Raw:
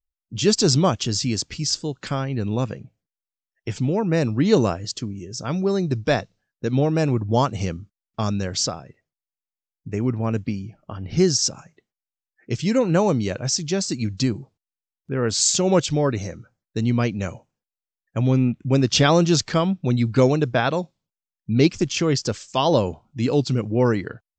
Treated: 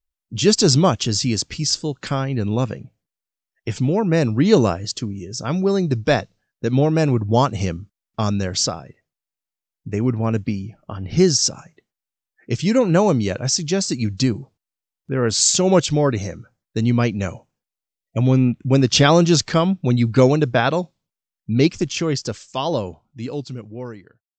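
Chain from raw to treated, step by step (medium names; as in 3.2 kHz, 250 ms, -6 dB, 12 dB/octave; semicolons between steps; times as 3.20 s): fade out at the end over 3.53 s; spectral selection erased 17.89–18.17 s, 680–1900 Hz; trim +3 dB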